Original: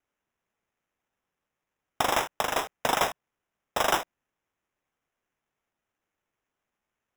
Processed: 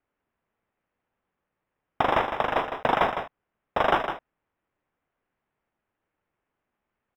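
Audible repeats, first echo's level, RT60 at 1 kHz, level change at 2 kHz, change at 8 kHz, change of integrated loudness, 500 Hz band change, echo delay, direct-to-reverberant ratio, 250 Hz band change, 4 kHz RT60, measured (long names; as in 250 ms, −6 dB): 1, −8.0 dB, no reverb audible, +2.0 dB, below −20 dB, +2.0 dB, +4.5 dB, 157 ms, no reverb audible, +5.0 dB, no reverb audible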